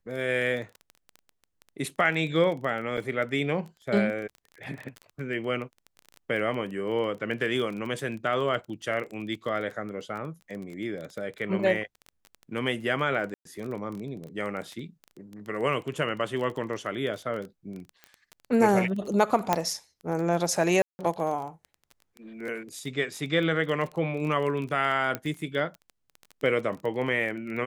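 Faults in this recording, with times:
crackle 19 per s -33 dBFS
2.97–2.98 s: dropout 5.8 ms
13.34–13.45 s: dropout 113 ms
19.53 s: pop -8 dBFS
20.82–20.99 s: dropout 170 ms
25.15 s: pop -14 dBFS

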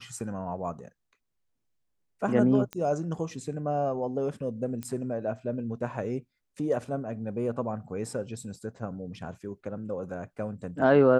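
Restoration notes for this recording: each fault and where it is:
2.73 s: pop -20 dBFS
4.83 s: pop -21 dBFS

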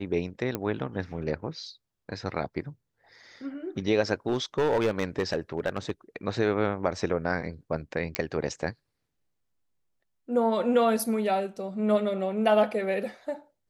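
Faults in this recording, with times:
0.55 s: pop -15 dBFS
4.28–5.90 s: clipped -20 dBFS
8.15 s: pop -9 dBFS

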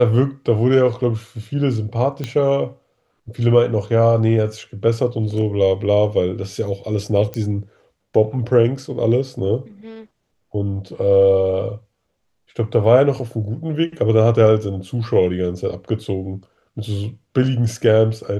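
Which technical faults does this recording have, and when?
2.24 s: pop -12 dBFS
7.34 s: pop -13 dBFS

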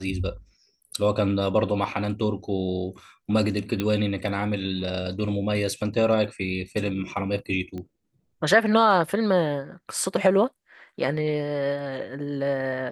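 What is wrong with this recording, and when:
3.80 s: pop -13 dBFS
7.78 s: pop -24 dBFS

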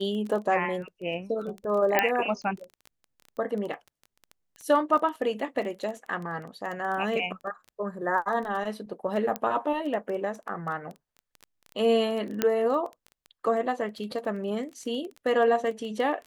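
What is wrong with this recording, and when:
crackle 13 per s -33 dBFS
1.99 s: pop -7 dBFS
9.36 s: pop -14 dBFS
12.42 s: pop -9 dBFS

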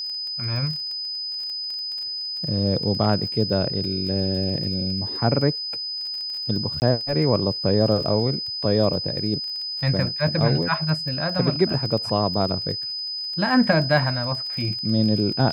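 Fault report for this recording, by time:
crackle 23 per s -30 dBFS
whine 5 kHz -27 dBFS
6.80–6.82 s: dropout 19 ms

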